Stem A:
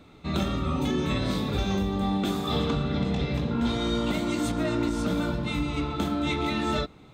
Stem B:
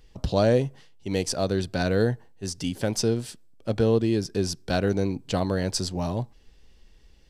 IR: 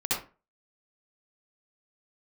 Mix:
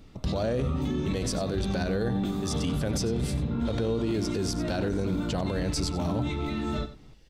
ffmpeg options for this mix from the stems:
-filter_complex "[0:a]lowshelf=frequency=280:gain=10.5,volume=-8.5dB,asplit=2[link_01][link_02];[link_02]volume=-14dB[link_03];[1:a]volume=0dB,asplit=2[link_04][link_05];[link_05]volume=-15dB[link_06];[link_03][link_06]amix=inputs=2:normalize=0,aecho=0:1:92:1[link_07];[link_01][link_04][link_07]amix=inputs=3:normalize=0,alimiter=limit=-20dB:level=0:latency=1:release=26"

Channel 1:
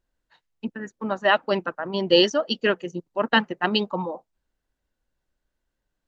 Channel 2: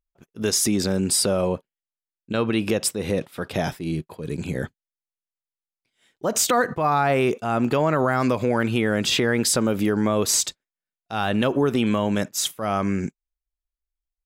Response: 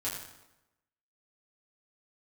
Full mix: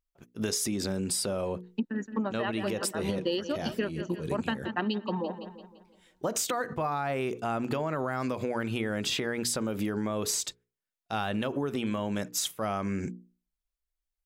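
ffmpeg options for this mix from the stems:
-filter_complex "[0:a]equalizer=frequency=250:width_type=o:width=0.98:gain=9.5,adelay=1150,volume=1.5dB,asplit=2[link_01][link_02];[link_02]volume=-17dB[link_03];[1:a]bandreject=frequency=60:width_type=h:width=6,bandreject=frequency=120:width_type=h:width=6,bandreject=frequency=180:width_type=h:width=6,bandreject=frequency=240:width_type=h:width=6,bandreject=frequency=300:width_type=h:width=6,bandreject=frequency=360:width_type=h:width=6,bandreject=frequency=420:width_type=h:width=6,bandreject=frequency=480:width_type=h:width=6,volume=-1dB,asplit=2[link_04][link_05];[link_05]apad=whole_len=318790[link_06];[link_01][link_06]sidechaincompress=threshold=-28dB:ratio=8:attack=21:release=249[link_07];[link_03]aecho=0:1:170|340|510|680|850|1020:1|0.45|0.202|0.0911|0.041|0.0185[link_08];[link_07][link_04][link_08]amix=inputs=3:normalize=0,acompressor=threshold=-27dB:ratio=10"

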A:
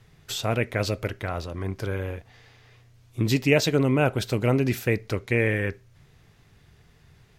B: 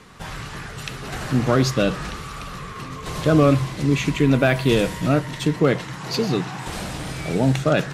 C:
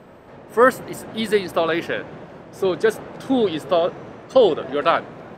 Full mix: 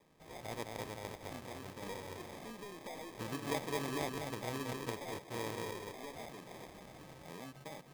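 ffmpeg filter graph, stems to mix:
ffmpeg -i stem1.wav -i stem2.wav -i stem3.wav -filter_complex "[0:a]volume=-16.5dB,asplit=2[link_01][link_02];[link_02]volume=-4dB[link_03];[1:a]volume=-15.5dB[link_04];[2:a]lowpass=3400,aeval=exprs='(tanh(20*val(0)+0.45)-tanh(0.45))/20':channel_layout=same,adelay=1300,volume=-2.5dB[link_05];[link_04][link_05]amix=inputs=2:normalize=0,flanger=delay=4.4:depth=8:regen=-65:speed=0.88:shape=sinusoidal,acompressor=threshold=-42dB:ratio=10,volume=0dB[link_06];[link_03]aecho=0:1:212:1[link_07];[link_01][link_06][link_07]amix=inputs=3:normalize=0,acrusher=samples=31:mix=1:aa=0.000001,lowshelf=frequency=180:gain=-10.5" out.wav

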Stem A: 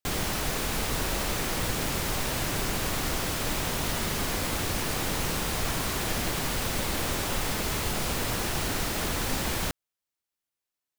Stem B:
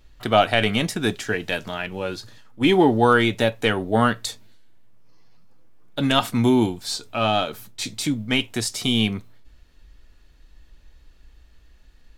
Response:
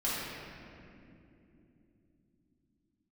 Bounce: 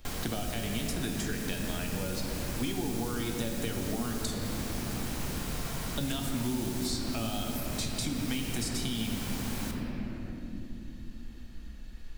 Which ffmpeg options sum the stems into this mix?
-filter_complex "[0:a]highshelf=frequency=5000:gain=-8,volume=-7.5dB,asplit=2[link_01][link_02];[link_02]volume=-6.5dB[link_03];[1:a]acompressor=threshold=-24dB:ratio=6,volume=-1dB,asplit=2[link_04][link_05];[link_05]volume=-7.5dB[link_06];[2:a]atrim=start_sample=2205[link_07];[link_03][link_06]amix=inputs=2:normalize=0[link_08];[link_08][link_07]afir=irnorm=-1:irlink=0[link_09];[link_01][link_04][link_09]amix=inputs=3:normalize=0,highshelf=frequency=6100:gain=5,acrossover=split=300|4700[link_10][link_11][link_12];[link_10]acompressor=threshold=-32dB:ratio=4[link_13];[link_11]acompressor=threshold=-41dB:ratio=4[link_14];[link_12]acompressor=threshold=-39dB:ratio=4[link_15];[link_13][link_14][link_15]amix=inputs=3:normalize=0"

